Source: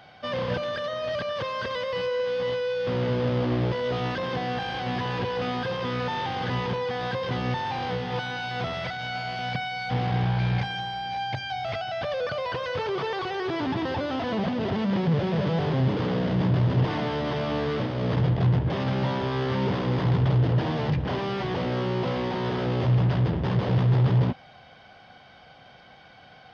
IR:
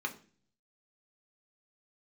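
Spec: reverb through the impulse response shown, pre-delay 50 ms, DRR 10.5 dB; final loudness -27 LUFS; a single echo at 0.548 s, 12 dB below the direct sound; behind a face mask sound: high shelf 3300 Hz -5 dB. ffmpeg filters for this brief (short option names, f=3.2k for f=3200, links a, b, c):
-filter_complex "[0:a]aecho=1:1:548:0.251,asplit=2[a][b];[1:a]atrim=start_sample=2205,adelay=50[c];[b][c]afir=irnorm=-1:irlink=0,volume=-14dB[d];[a][d]amix=inputs=2:normalize=0,highshelf=f=3.3k:g=-5,volume=-0.5dB"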